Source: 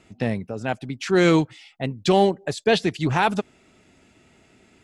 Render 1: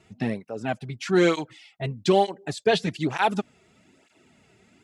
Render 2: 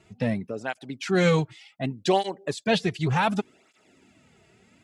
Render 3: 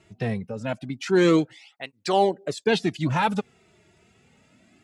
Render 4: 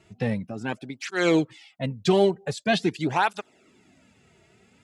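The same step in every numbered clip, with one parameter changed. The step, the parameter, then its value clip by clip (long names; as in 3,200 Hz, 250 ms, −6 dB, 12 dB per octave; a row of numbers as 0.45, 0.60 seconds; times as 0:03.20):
through-zero flanger with one copy inverted, nulls at: 1.1, 0.67, 0.26, 0.45 Hertz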